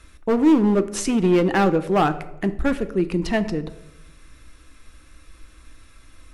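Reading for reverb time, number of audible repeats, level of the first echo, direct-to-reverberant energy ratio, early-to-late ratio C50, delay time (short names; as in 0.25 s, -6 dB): 0.90 s, none, none, 10.5 dB, 15.0 dB, none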